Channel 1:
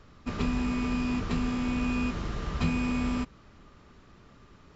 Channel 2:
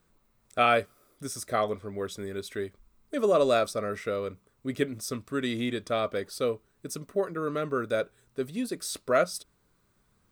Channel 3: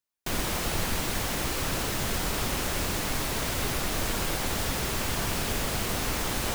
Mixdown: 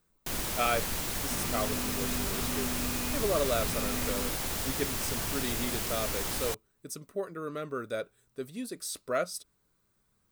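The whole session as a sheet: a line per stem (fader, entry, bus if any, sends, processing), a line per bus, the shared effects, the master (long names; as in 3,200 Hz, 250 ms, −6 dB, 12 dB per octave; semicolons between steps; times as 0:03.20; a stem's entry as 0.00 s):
−4.5 dB, 1.05 s, no send, brickwall limiter −25.5 dBFS, peak gain reduction 9.5 dB
−6.5 dB, 0.00 s, no send, no processing
−6.5 dB, 0.00 s, no send, no processing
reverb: not used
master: high-shelf EQ 5,600 Hz +7 dB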